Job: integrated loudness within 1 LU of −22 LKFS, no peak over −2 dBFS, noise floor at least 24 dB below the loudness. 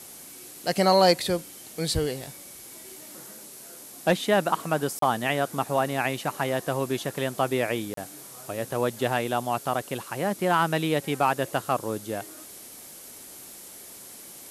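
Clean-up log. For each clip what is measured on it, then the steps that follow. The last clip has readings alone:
number of dropouts 2; longest dropout 33 ms; background noise floor −45 dBFS; target noise floor −51 dBFS; integrated loudness −26.5 LKFS; sample peak −8.5 dBFS; target loudness −22.0 LKFS
→ repair the gap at 0:04.99/0:07.94, 33 ms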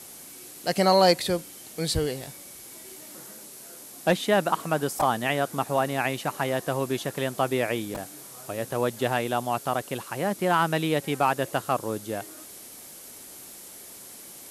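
number of dropouts 0; background noise floor −45 dBFS; target noise floor −51 dBFS
→ noise reduction from a noise print 6 dB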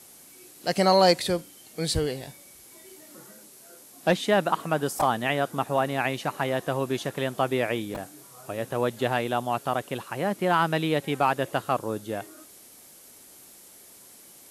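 background noise floor −51 dBFS; integrated loudness −26.5 LKFS; sample peak −8.5 dBFS; target loudness −22.0 LKFS
→ level +4.5 dB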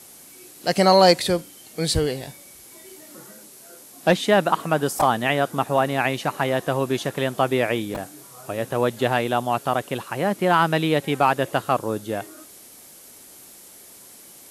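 integrated loudness −22.0 LKFS; sample peak −4.0 dBFS; background noise floor −46 dBFS

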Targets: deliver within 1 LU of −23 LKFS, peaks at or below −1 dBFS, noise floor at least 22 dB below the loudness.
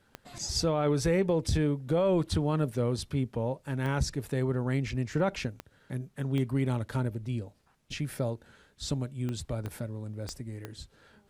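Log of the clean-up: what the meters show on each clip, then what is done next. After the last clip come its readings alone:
number of clicks 8; integrated loudness −31.0 LKFS; sample peak −18.0 dBFS; target loudness −23.0 LKFS
→ click removal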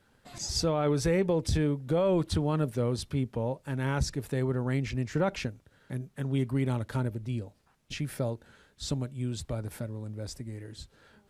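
number of clicks 0; integrated loudness −31.0 LKFS; sample peak −18.0 dBFS; target loudness −23.0 LKFS
→ level +8 dB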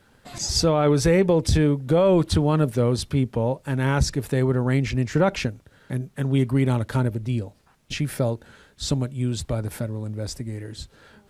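integrated loudness −23.0 LKFS; sample peak −10.0 dBFS; background noise floor −59 dBFS

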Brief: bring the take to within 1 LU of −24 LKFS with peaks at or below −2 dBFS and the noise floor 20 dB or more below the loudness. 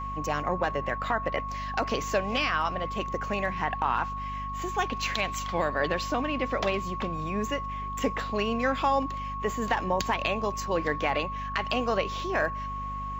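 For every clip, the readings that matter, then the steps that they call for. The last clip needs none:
mains hum 50 Hz; hum harmonics up to 250 Hz; level of the hum −36 dBFS; interfering tone 1,100 Hz; level of the tone −33 dBFS; integrated loudness −29.0 LKFS; sample peak −11.5 dBFS; target loudness −24.0 LKFS
→ mains-hum notches 50/100/150/200/250 Hz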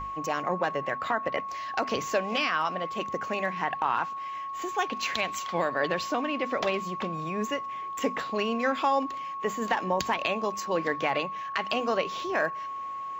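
mains hum none found; interfering tone 1,100 Hz; level of the tone −33 dBFS
→ notch filter 1,100 Hz, Q 30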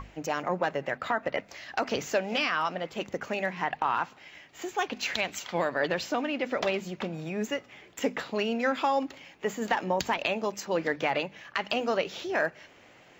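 interfering tone none found; integrated loudness −30.5 LKFS; sample peak −12.0 dBFS; target loudness −24.0 LKFS
→ level +6.5 dB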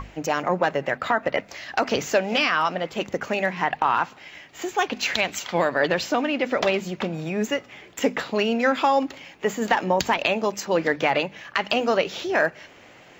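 integrated loudness −24.0 LKFS; sample peak −5.5 dBFS; background noise floor −49 dBFS

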